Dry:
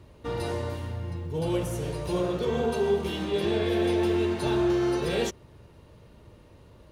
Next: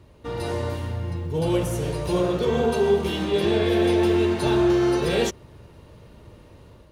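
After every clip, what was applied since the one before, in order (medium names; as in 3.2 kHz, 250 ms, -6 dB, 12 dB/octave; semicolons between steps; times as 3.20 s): level rider gain up to 5 dB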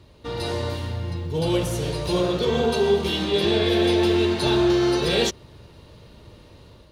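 peaking EQ 4.1 kHz +9 dB 0.94 oct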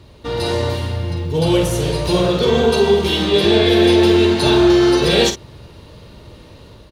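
doubling 49 ms -9 dB; trim +6.5 dB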